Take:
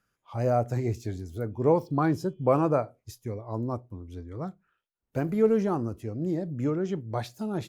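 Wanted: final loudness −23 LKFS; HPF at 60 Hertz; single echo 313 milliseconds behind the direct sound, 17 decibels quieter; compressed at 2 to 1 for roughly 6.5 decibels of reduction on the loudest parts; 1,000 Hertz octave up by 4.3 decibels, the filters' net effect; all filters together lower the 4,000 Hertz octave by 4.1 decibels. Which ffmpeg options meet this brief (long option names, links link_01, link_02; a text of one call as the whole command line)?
ffmpeg -i in.wav -af "highpass=60,equalizer=frequency=1000:width_type=o:gain=6,equalizer=frequency=4000:width_type=o:gain=-5.5,acompressor=threshold=-27dB:ratio=2,aecho=1:1:313:0.141,volume=8.5dB" out.wav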